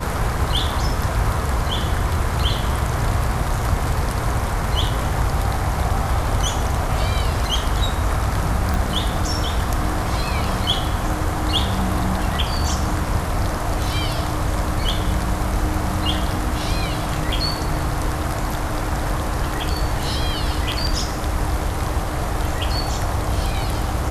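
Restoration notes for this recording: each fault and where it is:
0:08.74: click

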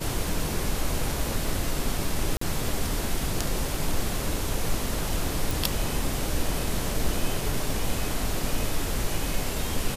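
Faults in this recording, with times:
0:02.37–0:02.41: drop-out 44 ms
0:05.51: click

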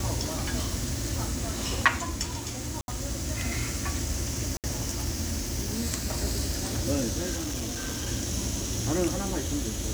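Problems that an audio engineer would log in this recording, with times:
0:02.81–0:02.88: drop-out 71 ms
0:04.57–0:04.64: drop-out 68 ms
0:07.35–0:08.09: clipping −29 dBFS

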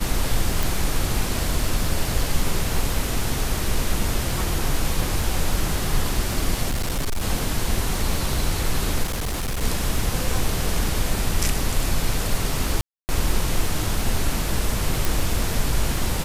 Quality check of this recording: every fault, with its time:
surface crackle 65 per second −28 dBFS
0:00.63: click
0:06.69–0:07.24: clipping −20 dBFS
0:09.03–0:09.63: clipping −22 dBFS
0:12.81–0:13.09: drop-out 279 ms
0:15.05: click

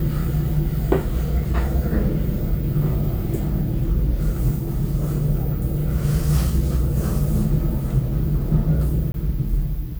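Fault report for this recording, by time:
0:09.12–0:09.14: drop-out 22 ms

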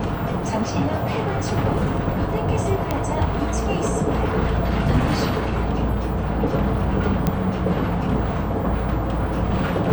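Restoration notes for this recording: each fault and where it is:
0:02.91: click −8 dBFS
0:07.27: click −7 dBFS

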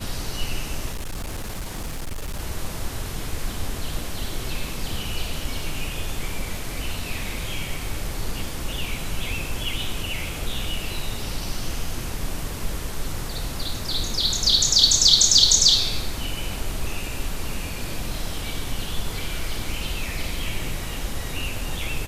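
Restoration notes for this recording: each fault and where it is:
0:00.91–0:02.40: clipping −26 dBFS

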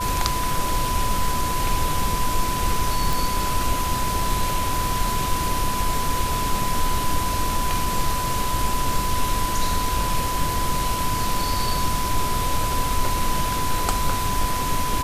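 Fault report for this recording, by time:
whistle 1,000 Hz −25 dBFS
0:03.13: click

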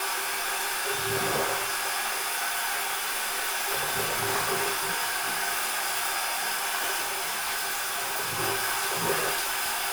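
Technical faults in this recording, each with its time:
0:07.01–0:08.40: clipping −26.5 dBFS

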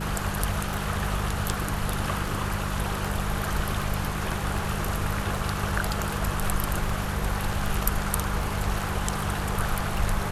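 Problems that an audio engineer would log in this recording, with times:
mains hum 50 Hz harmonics 4 −32 dBFS
scratch tick 78 rpm

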